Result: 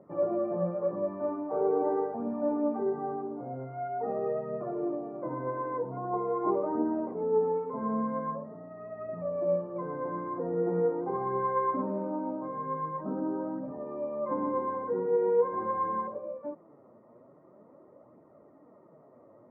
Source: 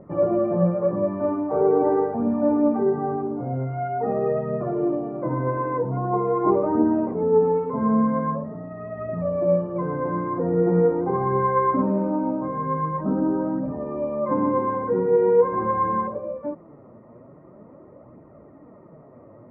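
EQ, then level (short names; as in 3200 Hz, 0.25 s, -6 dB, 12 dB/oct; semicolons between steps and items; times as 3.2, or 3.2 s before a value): HPF 490 Hz 6 dB/oct; LPF 1100 Hz 6 dB/oct; -4.0 dB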